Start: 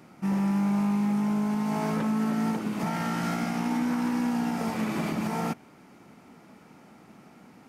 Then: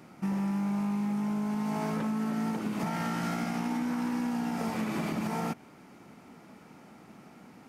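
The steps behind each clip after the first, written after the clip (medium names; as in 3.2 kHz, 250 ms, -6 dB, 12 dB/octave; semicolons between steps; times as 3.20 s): compression, threshold -28 dBFS, peak gain reduction 5.5 dB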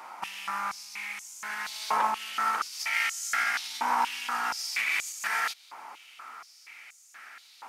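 step-sequenced high-pass 4.2 Hz 940–6800 Hz; trim +7.5 dB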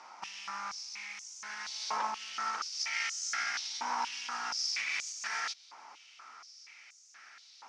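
four-pole ladder low-pass 6.2 kHz, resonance 65%; trim +3 dB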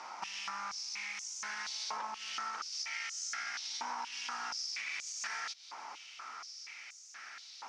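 compression 6:1, threshold -43 dBFS, peak gain reduction 13 dB; trim +5.5 dB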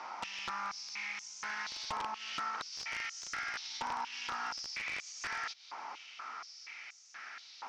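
integer overflow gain 30 dB; distance through air 130 m; trim +3 dB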